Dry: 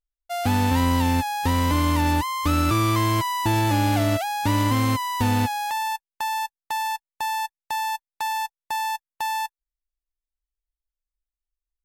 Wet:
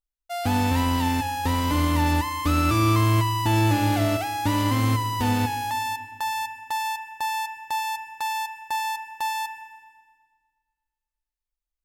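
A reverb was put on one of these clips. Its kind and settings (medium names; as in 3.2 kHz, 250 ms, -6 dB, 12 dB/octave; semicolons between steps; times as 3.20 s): FDN reverb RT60 1.6 s, low-frequency decay 1.4×, high-frequency decay 0.9×, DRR 9 dB; trim -2 dB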